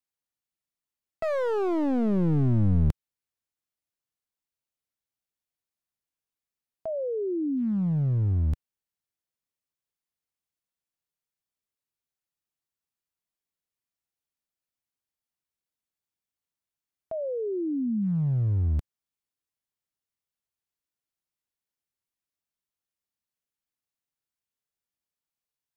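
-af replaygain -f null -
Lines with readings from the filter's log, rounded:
track_gain = +11.6 dB
track_peak = 0.135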